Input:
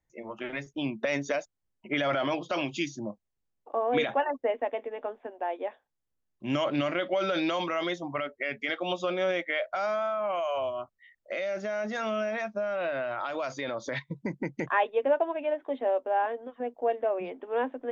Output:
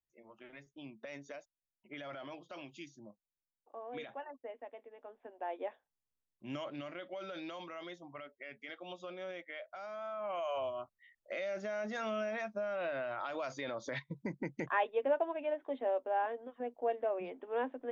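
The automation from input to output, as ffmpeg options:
-af "volume=3.5dB,afade=t=in:st=5.03:d=0.6:silence=0.251189,afade=t=out:st=5.63:d=1.14:silence=0.316228,afade=t=in:st=9.9:d=0.6:silence=0.334965"

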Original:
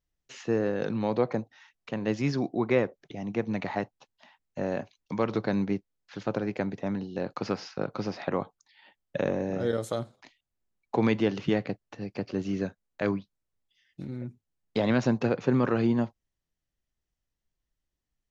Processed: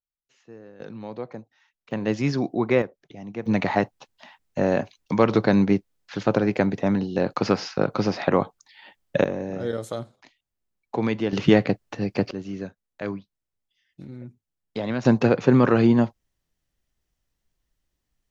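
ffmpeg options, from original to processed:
-af "asetnsamples=n=441:p=0,asendcmd='0.8 volume volume -8dB;1.91 volume volume 4dB;2.82 volume volume -3dB;3.46 volume volume 9dB;9.24 volume volume 0dB;11.33 volume volume 10dB;12.31 volume volume -2.5dB;15.05 volume volume 7.5dB',volume=-18dB"

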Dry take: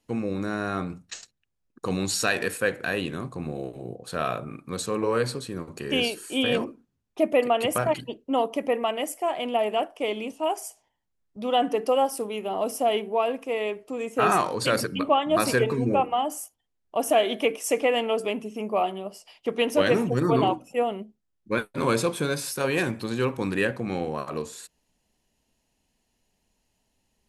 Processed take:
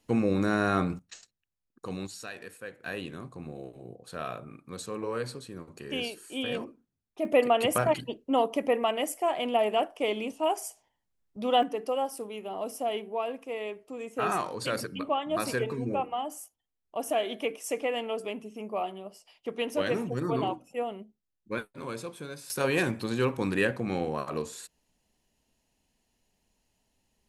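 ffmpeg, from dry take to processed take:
-af "asetnsamples=n=441:p=0,asendcmd='0.99 volume volume -9dB;2.07 volume volume -17dB;2.85 volume volume -8.5dB;7.25 volume volume -1dB;11.63 volume volume -7.5dB;21.73 volume volume -14dB;22.5 volume volume -1.5dB',volume=3dB"

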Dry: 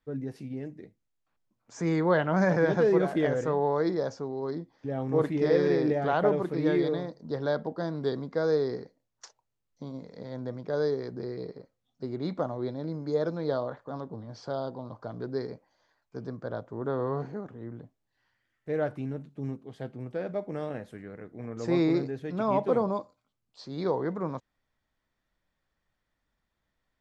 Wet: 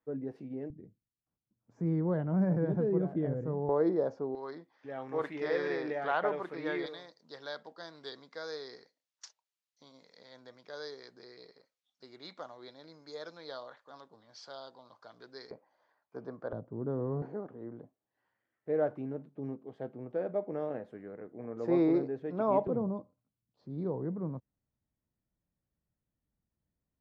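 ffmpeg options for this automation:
-af "asetnsamples=n=441:p=0,asendcmd='0.7 bandpass f 120;3.69 bandpass f 430;4.35 bandpass f 1700;6.86 bandpass f 4200;15.51 bandpass f 810;16.53 bandpass f 180;17.22 bandpass f 520;22.67 bandpass f 130',bandpass=f=520:t=q:w=0.71:csg=0"

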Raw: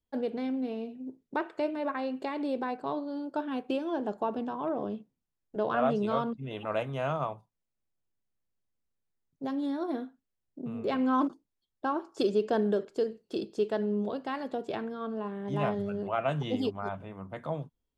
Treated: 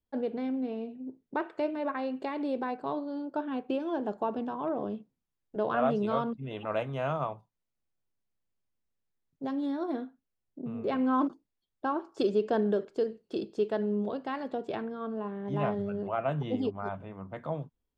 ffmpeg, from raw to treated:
-af "asetnsamples=n=441:p=0,asendcmd='1.4 lowpass f 4100;3.22 lowpass f 2400;3.8 lowpass f 4400;10.04 lowpass f 2500;11.23 lowpass f 3800;14.82 lowpass f 2300;16.12 lowpass f 1500;16.8 lowpass f 2800',lowpass=f=2.5k:p=1"

